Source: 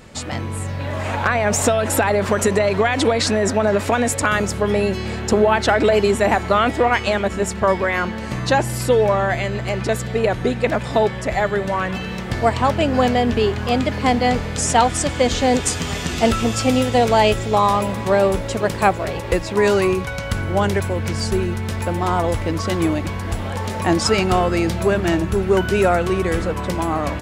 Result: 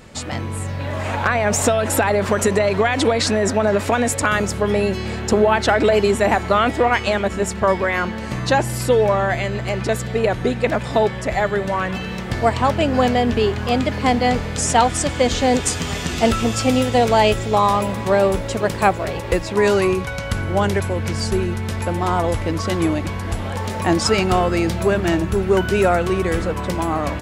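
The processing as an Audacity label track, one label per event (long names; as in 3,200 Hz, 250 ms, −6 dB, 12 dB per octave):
19.490000	23.560000	linear-phase brick-wall low-pass 14,000 Hz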